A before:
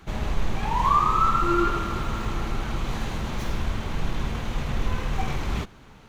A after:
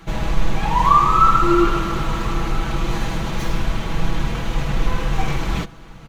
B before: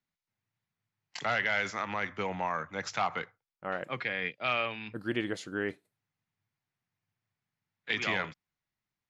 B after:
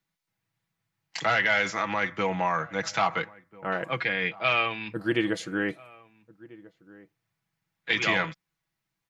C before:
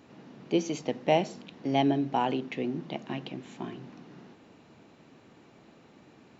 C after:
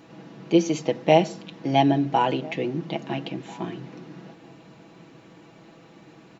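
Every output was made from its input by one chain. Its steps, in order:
comb 6.1 ms, depth 54%; echo from a far wall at 230 m, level -21 dB; trim +5 dB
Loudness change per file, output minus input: +6.5 LU, +6.0 LU, +6.5 LU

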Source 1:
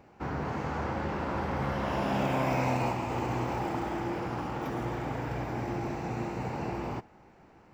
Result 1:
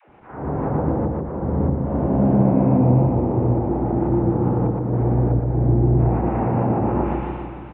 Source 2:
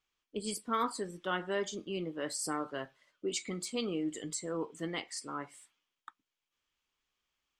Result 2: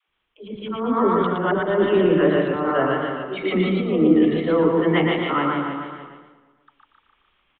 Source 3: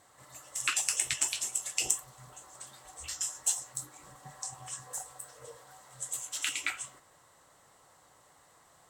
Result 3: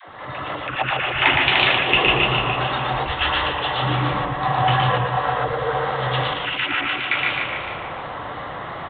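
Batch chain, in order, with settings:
distance through air 130 m; on a send: feedback delay 149 ms, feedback 60%, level -6 dB; on the sum: low-pass that closes with the level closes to 420 Hz, closed at -27.5 dBFS; resampled via 8 kHz; level rider gain up to 6.5 dB; slow attack 214 ms; phase dispersion lows, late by 91 ms, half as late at 370 Hz; modulated delay 116 ms, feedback 42%, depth 69 cents, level -3.5 dB; normalise loudness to -20 LUFS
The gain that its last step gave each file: +5.5 dB, +11.5 dB, +23.5 dB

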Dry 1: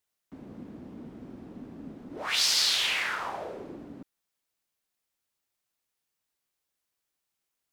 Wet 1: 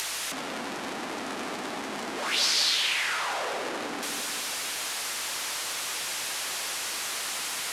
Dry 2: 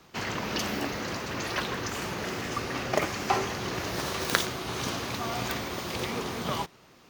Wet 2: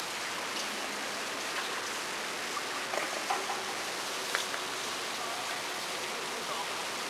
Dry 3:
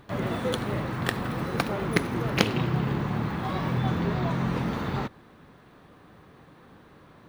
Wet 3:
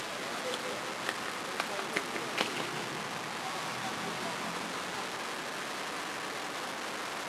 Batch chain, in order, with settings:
one-bit delta coder 64 kbps, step -24 dBFS; flange 0.34 Hz, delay 5.6 ms, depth 5.4 ms, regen -72%; frequency weighting A; hum 50 Hz, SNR 33 dB; filtered feedback delay 193 ms, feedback 52%, level -5 dB; dynamic bell 120 Hz, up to -4 dB, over -53 dBFS, Q 1.4; upward compressor, threshold -36 dBFS; peak normalisation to -12 dBFS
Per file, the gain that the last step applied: +3.5 dB, -1.5 dB, -2.0 dB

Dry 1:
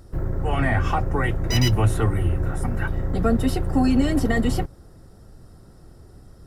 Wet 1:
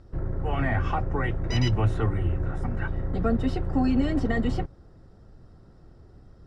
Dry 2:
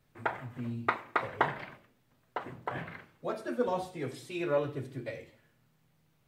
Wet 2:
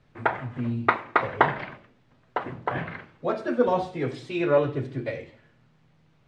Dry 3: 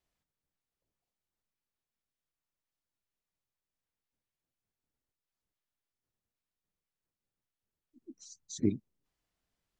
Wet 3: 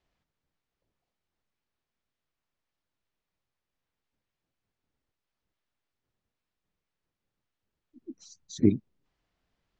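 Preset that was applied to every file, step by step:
distance through air 130 m; normalise loudness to -27 LUFS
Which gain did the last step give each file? -4.0 dB, +9.0 dB, +7.5 dB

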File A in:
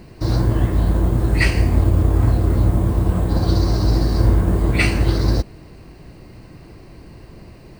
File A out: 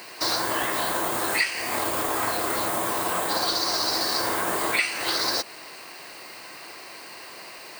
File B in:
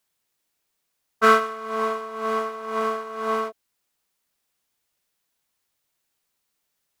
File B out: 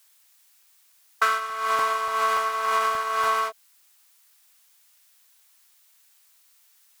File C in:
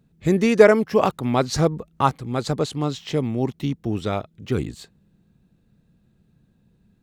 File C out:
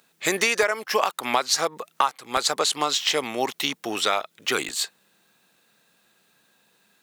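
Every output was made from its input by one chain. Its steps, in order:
high-pass 950 Hz 12 dB/octave; treble shelf 5.3 kHz +5.5 dB; compression 16:1, threshold -32 dBFS; crackling interface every 0.29 s, samples 64, zero, from 0.63 s; normalise loudness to -24 LUFS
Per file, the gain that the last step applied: +11.0 dB, +12.5 dB, +14.5 dB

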